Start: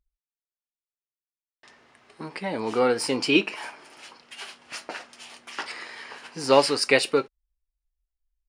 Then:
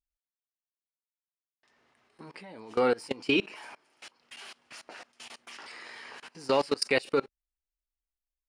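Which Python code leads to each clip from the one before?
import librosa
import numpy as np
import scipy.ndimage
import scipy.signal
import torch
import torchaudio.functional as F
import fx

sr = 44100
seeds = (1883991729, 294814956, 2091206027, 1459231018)

y = fx.level_steps(x, sr, step_db=23)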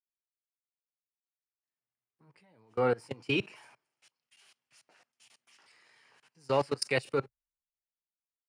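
y = fx.graphic_eq_10(x, sr, hz=(125, 250, 4000), db=(12, -4, -5))
y = fx.band_widen(y, sr, depth_pct=70)
y = y * 10.0 ** (-6.5 / 20.0)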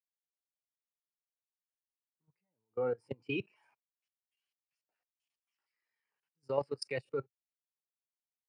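y = fx.level_steps(x, sr, step_db=12)
y = fx.spectral_expand(y, sr, expansion=1.5)
y = y * 10.0 ** (3.0 / 20.0)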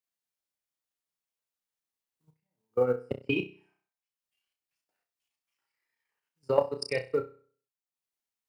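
y = fx.room_flutter(x, sr, wall_m=5.5, rt60_s=0.49)
y = fx.transient(y, sr, attack_db=8, sustain_db=-7)
y = fx.quant_float(y, sr, bits=6)
y = y * 10.0 ** (1.5 / 20.0)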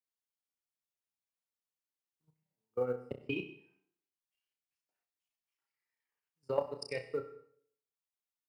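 y = fx.rev_plate(x, sr, seeds[0], rt60_s=0.61, hf_ratio=0.9, predelay_ms=75, drr_db=14.0)
y = y * 10.0 ** (-8.0 / 20.0)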